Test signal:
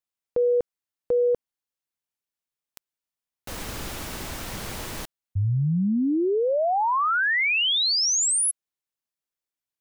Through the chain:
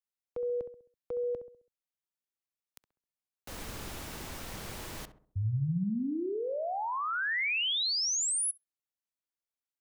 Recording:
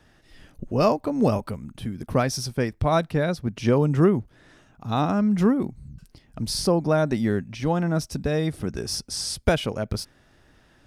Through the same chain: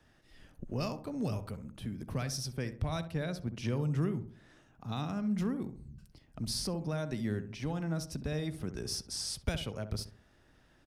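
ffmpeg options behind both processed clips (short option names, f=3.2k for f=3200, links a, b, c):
-filter_complex "[0:a]acrossover=split=170|2100[a][b][c];[b]acompressor=threshold=-24dB:ratio=6:attack=0.11:release=741:knee=2.83:detection=peak[d];[a][d][c]amix=inputs=3:normalize=0,asplit=2[e][f];[f]adelay=66,lowpass=f=1.2k:p=1,volume=-9.5dB,asplit=2[g][h];[h]adelay=66,lowpass=f=1.2k:p=1,volume=0.45,asplit=2[i][j];[j]adelay=66,lowpass=f=1.2k:p=1,volume=0.45,asplit=2[k][l];[l]adelay=66,lowpass=f=1.2k:p=1,volume=0.45,asplit=2[m][n];[n]adelay=66,lowpass=f=1.2k:p=1,volume=0.45[o];[g][i][k][m][o]amix=inputs=5:normalize=0[p];[e][p]amix=inputs=2:normalize=0,volume=-8dB"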